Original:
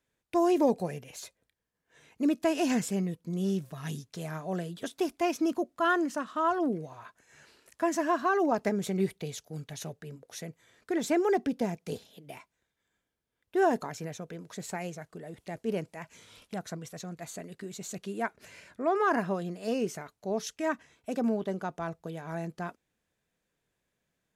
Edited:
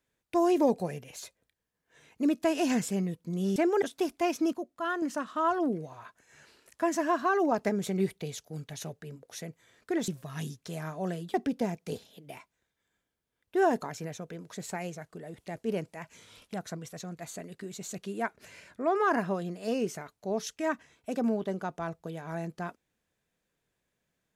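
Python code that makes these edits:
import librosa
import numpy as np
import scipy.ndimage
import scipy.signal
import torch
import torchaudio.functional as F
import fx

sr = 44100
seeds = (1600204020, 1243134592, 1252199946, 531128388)

y = fx.edit(x, sr, fx.swap(start_s=3.56, length_s=1.26, other_s=11.08, other_length_s=0.26),
    fx.clip_gain(start_s=5.53, length_s=0.49, db=-6.0), tone=tone)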